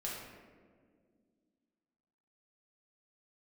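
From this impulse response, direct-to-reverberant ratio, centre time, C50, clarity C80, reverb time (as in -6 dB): -5.5 dB, 81 ms, 0.5 dB, 3.0 dB, 1.9 s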